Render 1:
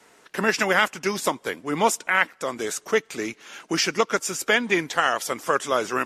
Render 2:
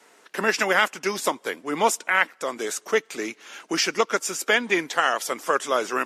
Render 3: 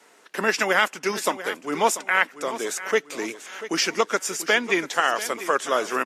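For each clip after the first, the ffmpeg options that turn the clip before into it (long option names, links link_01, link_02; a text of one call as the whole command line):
ffmpeg -i in.wav -af "highpass=240" out.wav
ffmpeg -i in.wav -af "aecho=1:1:689|1378|2067|2756:0.2|0.0798|0.0319|0.0128" out.wav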